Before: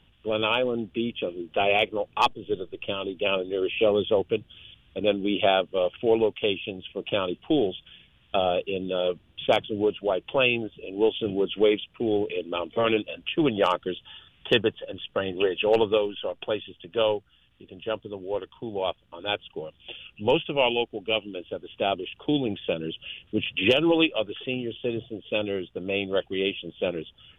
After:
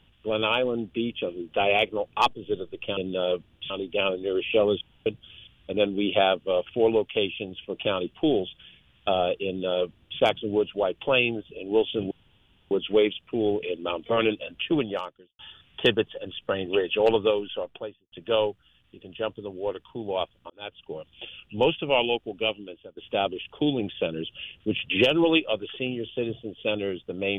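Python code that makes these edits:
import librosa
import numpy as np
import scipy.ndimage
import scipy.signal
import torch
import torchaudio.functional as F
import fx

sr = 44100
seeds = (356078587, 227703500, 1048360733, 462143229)

y = fx.studio_fade_out(x, sr, start_s=16.19, length_s=0.6)
y = fx.edit(y, sr, fx.room_tone_fill(start_s=4.08, length_s=0.25),
    fx.duplicate(start_s=8.73, length_s=0.73, to_s=2.97),
    fx.insert_room_tone(at_s=11.38, length_s=0.6),
    fx.fade_out_span(start_s=13.38, length_s=0.68, curve='qua'),
    fx.fade_in_span(start_s=19.17, length_s=0.49),
    fx.fade_out_to(start_s=21.09, length_s=0.55, floor_db=-20.0), tone=tone)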